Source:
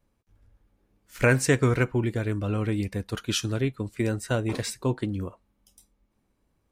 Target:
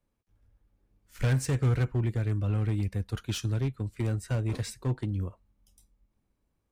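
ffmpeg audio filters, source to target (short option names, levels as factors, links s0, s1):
-filter_complex "[0:a]acrossover=split=130[s0][s1];[s0]dynaudnorm=f=180:g=9:m=3.55[s2];[s1]asoftclip=type=hard:threshold=0.0708[s3];[s2][s3]amix=inputs=2:normalize=0,volume=0.447"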